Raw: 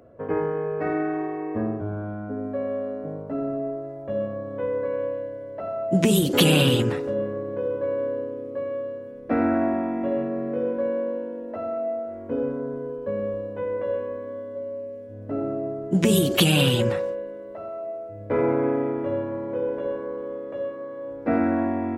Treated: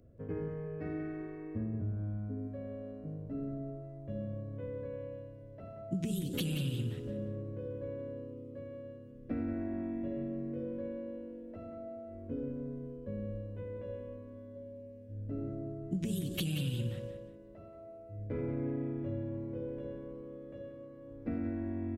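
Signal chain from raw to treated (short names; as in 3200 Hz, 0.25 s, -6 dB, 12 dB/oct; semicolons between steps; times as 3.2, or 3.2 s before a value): passive tone stack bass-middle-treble 10-0-1; compressor 6:1, threshold -42 dBFS, peak gain reduction 11 dB; feedback echo 0.181 s, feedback 28%, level -10 dB; gain +10 dB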